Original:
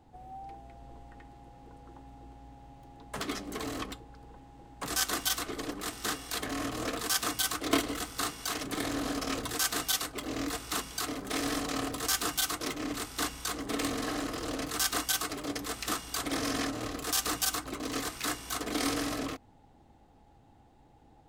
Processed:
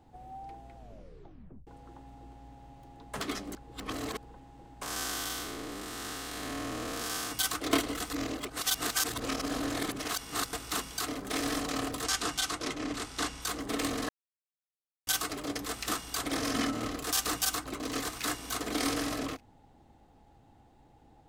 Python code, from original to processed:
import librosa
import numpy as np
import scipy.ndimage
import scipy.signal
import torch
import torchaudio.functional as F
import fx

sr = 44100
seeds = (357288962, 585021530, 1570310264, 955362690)

y = fx.spec_blur(x, sr, span_ms=257.0, at=(4.82, 7.32))
y = fx.lowpass(y, sr, hz=8600.0, slope=12, at=(12.04, 13.42))
y = fx.small_body(y, sr, hz=(220.0, 1300.0, 2100.0, 3000.0), ring_ms=45, db=8, at=(16.55, 16.95))
y = fx.echo_throw(y, sr, start_s=17.49, length_s=0.73, ms=590, feedback_pct=20, wet_db=-13.5)
y = fx.edit(y, sr, fx.tape_stop(start_s=0.76, length_s=0.91),
    fx.reverse_span(start_s=3.55, length_s=0.62),
    fx.reverse_span(start_s=8.1, length_s=2.43),
    fx.silence(start_s=14.09, length_s=0.98), tone=tone)